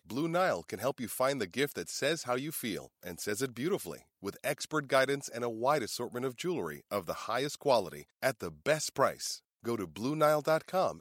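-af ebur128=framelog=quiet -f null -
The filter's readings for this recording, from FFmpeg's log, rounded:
Integrated loudness:
  I:         -33.1 LUFS
  Threshold: -43.2 LUFS
Loudness range:
  LRA:         2.5 LU
  Threshold: -53.7 LUFS
  LRA low:   -34.7 LUFS
  LRA high:  -32.2 LUFS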